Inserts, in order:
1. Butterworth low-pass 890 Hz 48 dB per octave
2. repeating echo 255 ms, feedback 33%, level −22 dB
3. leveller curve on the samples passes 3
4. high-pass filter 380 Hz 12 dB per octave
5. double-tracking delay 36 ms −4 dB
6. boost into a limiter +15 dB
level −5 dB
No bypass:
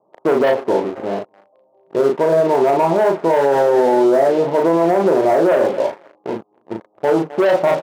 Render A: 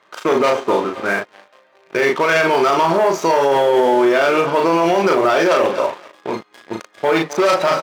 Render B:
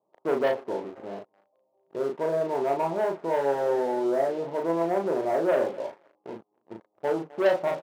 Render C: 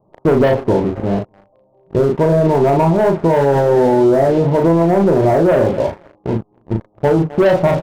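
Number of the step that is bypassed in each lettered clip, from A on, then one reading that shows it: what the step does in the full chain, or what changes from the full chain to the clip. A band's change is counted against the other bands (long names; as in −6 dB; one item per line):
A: 1, 2 kHz band +9.5 dB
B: 6, change in crest factor +7.5 dB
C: 4, 125 Hz band +14.0 dB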